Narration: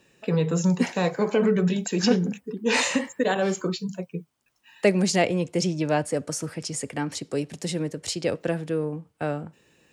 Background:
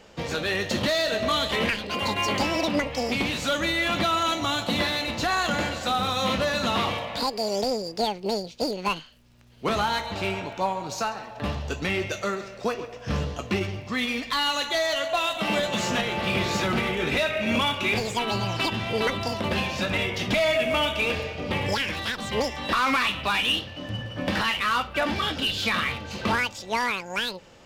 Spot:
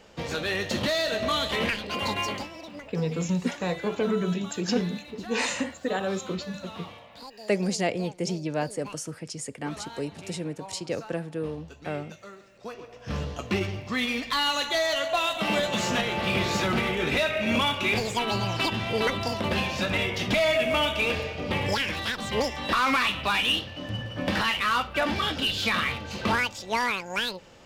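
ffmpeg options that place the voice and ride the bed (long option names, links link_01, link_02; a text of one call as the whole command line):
ffmpeg -i stem1.wav -i stem2.wav -filter_complex "[0:a]adelay=2650,volume=-5dB[link_01];[1:a]volume=14.5dB,afade=type=out:start_time=2.17:duration=0.32:silence=0.177828,afade=type=in:start_time=12.53:duration=1.05:silence=0.149624[link_02];[link_01][link_02]amix=inputs=2:normalize=0" out.wav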